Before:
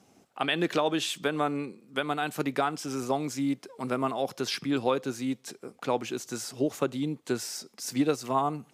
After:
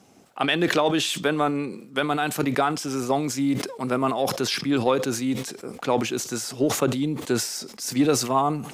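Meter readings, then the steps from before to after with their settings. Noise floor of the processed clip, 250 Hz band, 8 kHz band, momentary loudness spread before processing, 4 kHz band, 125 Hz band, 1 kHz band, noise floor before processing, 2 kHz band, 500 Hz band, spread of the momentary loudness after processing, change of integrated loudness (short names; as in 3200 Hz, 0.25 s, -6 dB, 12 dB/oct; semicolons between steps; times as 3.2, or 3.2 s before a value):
-46 dBFS, +6.0 dB, +9.0 dB, 8 LU, +6.5 dB, +7.5 dB, +5.5 dB, -63 dBFS, +6.0 dB, +5.5 dB, 7 LU, +6.0 dB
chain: in parallel at -12 dB: soft clip -23 dBFS, distortion -12 dB; on the sum: sustainer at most 79 dB/s; gain +3.5 dB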